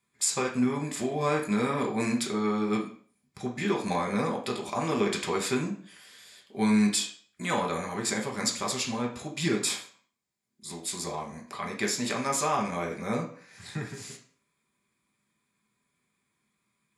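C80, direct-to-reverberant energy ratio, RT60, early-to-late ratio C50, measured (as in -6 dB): 13.0 dB, -0.5 dB, 0.50 s, 8.0 dB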